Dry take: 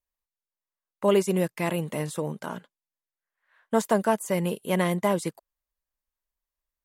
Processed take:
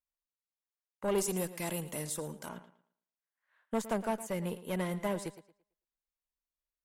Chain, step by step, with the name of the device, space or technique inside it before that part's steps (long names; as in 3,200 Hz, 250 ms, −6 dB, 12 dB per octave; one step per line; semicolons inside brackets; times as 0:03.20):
rockabilly slapback (tube saturation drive 16 dB, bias 0.55; tape delay 111 ms, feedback 28%, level −13.5 dB, low-pass 5,800 Hz)
0:01.18–0:02.49: bass and treble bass −1 dB, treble +12 dB
level −6.5 dB